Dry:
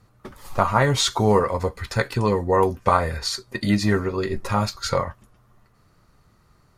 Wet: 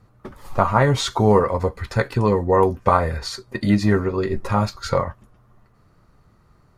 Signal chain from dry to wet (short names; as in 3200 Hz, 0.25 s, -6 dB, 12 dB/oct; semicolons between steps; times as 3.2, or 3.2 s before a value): high shelf 2200 Hz -8.5 dB; gain +3 dB